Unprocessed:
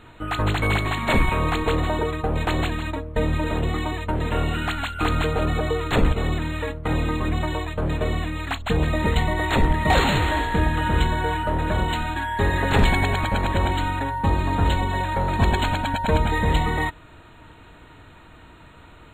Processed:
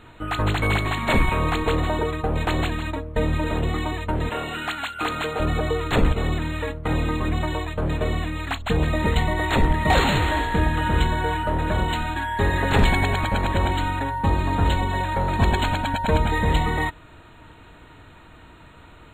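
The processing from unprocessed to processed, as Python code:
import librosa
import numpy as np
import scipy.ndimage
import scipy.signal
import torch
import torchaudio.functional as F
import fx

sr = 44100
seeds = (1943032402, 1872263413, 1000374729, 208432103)

y = fx.highpass(x, sr, hz=430.0, slope=6, at=(4.29, 5.4))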